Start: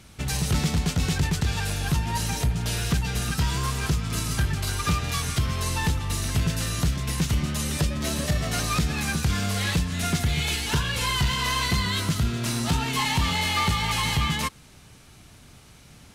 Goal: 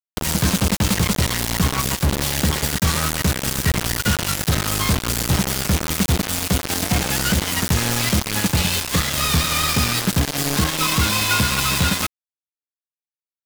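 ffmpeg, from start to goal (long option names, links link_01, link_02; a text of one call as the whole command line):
ffmpeg -i in.wav -af "acrusher=bits=3:mix=0:aa=0.000001,asetrate=52920,aresample=44100,volume=4dB" out.wav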